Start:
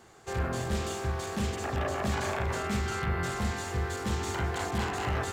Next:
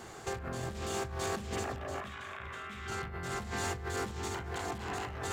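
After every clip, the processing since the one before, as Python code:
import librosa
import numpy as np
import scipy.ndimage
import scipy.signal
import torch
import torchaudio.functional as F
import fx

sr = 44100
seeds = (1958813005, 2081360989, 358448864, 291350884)

y = fx.spec_box(x, sr, start_s=2.02, length_s=0.85, low_hz=1000.0, high_hz=3900.0, gain_db=10)
y = fx.over_compress(y, sr, threshold_db=-39.0, ratio=-1.0)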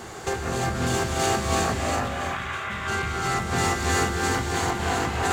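y = fx.rev_gated(x, sr, seeds[0], gate_ms=380, shape='rising', drr_db=-2.0)
y = F.gain(torch.from_numpy(y), 9.0).numpy()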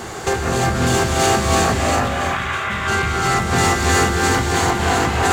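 y = 10.0 ** (-14.5 / 20.0) * np.tanh(x / 10.0 ** (-14.5 / 20.0))
y = F.gain(torch.from_numpy(y), 8.5).numpy()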